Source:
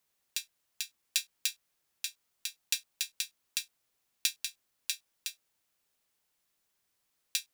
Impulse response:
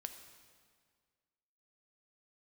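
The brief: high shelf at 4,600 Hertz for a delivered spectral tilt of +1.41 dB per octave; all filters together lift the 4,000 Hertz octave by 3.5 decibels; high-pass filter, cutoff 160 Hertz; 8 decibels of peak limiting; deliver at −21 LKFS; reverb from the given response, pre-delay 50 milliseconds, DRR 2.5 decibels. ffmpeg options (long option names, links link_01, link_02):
-filter_complex "[0:a]highpass=160,equalizer=frequency=4000:width_type=o:gain=7.5,highshelf=frequency=4600:gain=-7,alimiter=limit=-17dB:level=0:latency=1,asplit=2[link_01][link_02];[1:a]atrim=start_sample=2205,adelay=50[link_03];[link_02][link_03]afir=irnorm=-1:irlink=0,volume=1dB[link_04];[link_01][link_04]amix=inputs=2:normalize=0,volume=16dB"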